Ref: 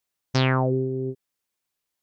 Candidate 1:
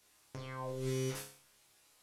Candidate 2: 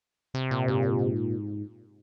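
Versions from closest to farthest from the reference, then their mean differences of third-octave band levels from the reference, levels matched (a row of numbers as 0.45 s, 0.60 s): 2, 1; 11.0 dB, 16.0 dB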